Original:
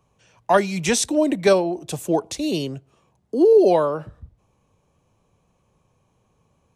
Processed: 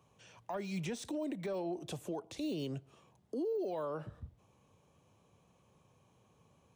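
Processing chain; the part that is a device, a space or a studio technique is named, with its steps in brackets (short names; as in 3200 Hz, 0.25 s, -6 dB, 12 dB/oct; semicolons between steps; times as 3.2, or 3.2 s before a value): broadcast voice chain (HPF 81 Hz; de-esser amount 100%; compressor 5:1, threshold -32 dBFS, peak gain reduction 19 dB; bell 3300 Hz +3 dB 0.47 oct; limiter -28 dBFS, peak gain reduction 9 dB); gain -2.5 dB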